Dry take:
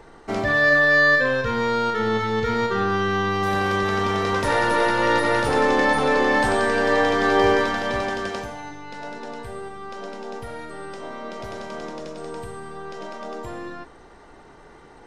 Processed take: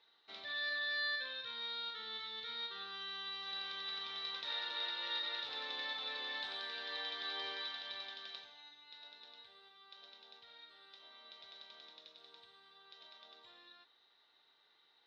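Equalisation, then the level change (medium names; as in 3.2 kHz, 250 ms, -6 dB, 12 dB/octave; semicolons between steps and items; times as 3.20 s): band-pass filter 3.8 kHz, Q 12; distance through air 180 m; +6.0 dB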